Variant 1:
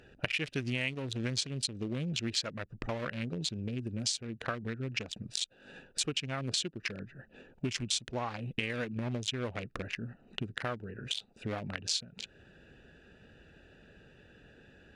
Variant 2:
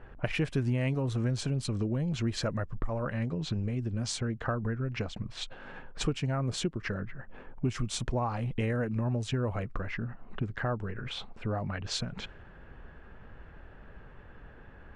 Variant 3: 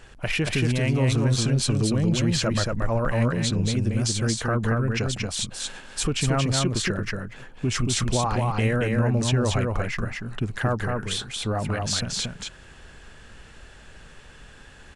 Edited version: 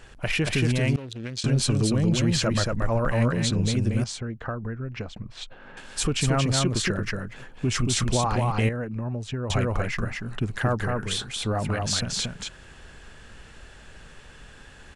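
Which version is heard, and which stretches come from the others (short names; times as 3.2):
3
0.96–1.44 from 1
4.04–5.77 from 2
8.69–9.5 from 2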